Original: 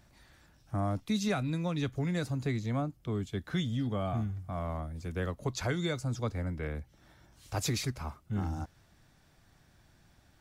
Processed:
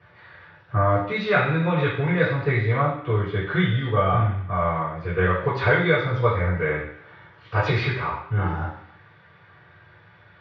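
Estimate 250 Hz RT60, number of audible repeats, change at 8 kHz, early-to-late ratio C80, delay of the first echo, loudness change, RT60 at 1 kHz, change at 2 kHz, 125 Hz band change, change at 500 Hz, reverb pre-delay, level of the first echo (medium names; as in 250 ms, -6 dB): 0.75 s, no echo, under -15 dB, 7.0 dB, no echo, +11.5 dB, 0.65 s, +18.0 dB, +10.5 dB, +14.5 dB, 3 ms, no echo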